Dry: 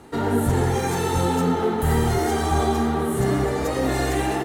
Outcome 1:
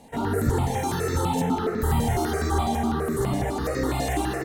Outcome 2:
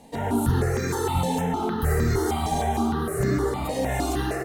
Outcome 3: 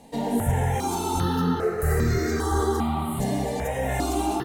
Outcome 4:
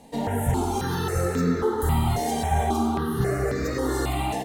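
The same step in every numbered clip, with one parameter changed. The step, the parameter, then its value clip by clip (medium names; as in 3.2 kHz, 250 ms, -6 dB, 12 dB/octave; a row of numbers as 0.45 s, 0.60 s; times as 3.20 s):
stepped phaser, rate: 12 Hz, 6.5 Hz, 2.5 Hz, 3.7 Hz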